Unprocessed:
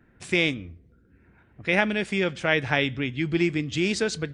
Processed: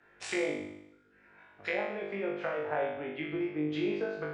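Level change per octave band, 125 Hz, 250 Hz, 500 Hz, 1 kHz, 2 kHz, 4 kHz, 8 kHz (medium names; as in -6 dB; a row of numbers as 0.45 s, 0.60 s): -15.5 dB, -8.5 dB, -5.5 dB, -6.0 dB, -12.5 dB, -16.0 dB, under -10 dB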